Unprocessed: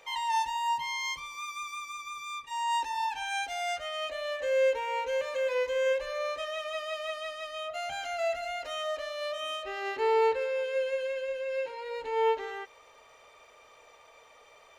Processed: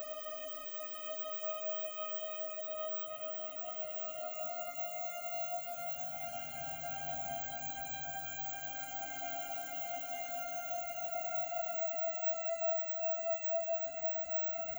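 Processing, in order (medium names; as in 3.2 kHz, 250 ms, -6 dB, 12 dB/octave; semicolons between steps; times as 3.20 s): graphic EQ 125/250/500/1000/2000/4000/8000 Hz +5/+11/-3/-5/-6/-11/+6 dB; compression 2:1, threshold -56 dBFS, peak gain reduction 17 dB; careless resampling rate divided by 2×, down filtered, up zero stuff; Paulstretch 17×, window 0.25 s, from 7.49 s; bit-crushed delay 225 ms, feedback 35%, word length 11-bit, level -10 dB; trim +6 dB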